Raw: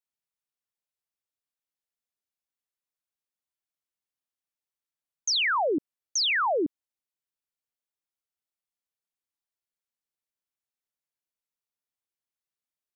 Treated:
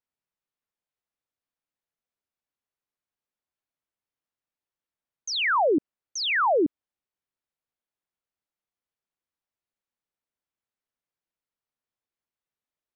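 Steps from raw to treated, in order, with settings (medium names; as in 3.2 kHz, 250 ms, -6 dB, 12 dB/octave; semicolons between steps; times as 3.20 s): low-pass 1.8 kHz 6 dB/octave; trim +4.5 dB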